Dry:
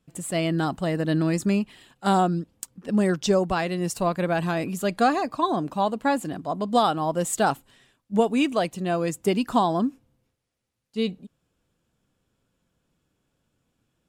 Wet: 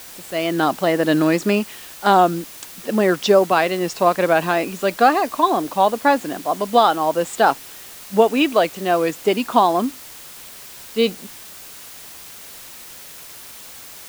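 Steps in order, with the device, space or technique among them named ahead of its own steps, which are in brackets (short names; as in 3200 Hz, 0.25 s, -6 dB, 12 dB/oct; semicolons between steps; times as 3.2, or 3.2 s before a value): dictaphone (BPF 330–4300 Hz; AGC; wow and flutter; white noise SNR 19 dB)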